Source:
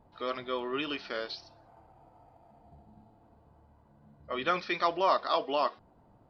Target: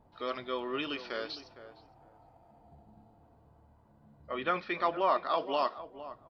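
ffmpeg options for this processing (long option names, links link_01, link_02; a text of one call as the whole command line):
ffmpeg -i in.wav -filter_complex "[0:a]asettb=1/sr,asplit=3[link_01][link_02][link_03];[link_01]atrim=end=4.314[link_04];[link_02]atrim=start=4.31:end=5.38,asetpts=PTS-STARTPTS,afade=type=in:duration=0.004:curve=qsin,afade=type=out:start_time=1.066:duration=0.004:curve=qsin,lowpass=2900[link_05];[link_03]atrim=start=5.376[link_06];[link_04][link_05]acrossfade=duration=0.004:curve1=hsin:curve2=qsin[link_07];[link_07][link_06]acrossfade=duration=0.004:curve1=qsin:curve2=hsin,asplit=2[link_08][link_09];[link_09]adelay=459,lowpass=frequency=1200:poles=1,volume=-12.5dB,asplit=2[link_10][link_11];[link_11]adelay=459,lowpass=frequency=1200:poles=1,volume=0.19[link_12];[link_10][link_12]amix=inputs=2:normalize=0[link_13];[link_08][link_13]amix=inputs=2:normalize=0,volume=-1.5dB" out.wav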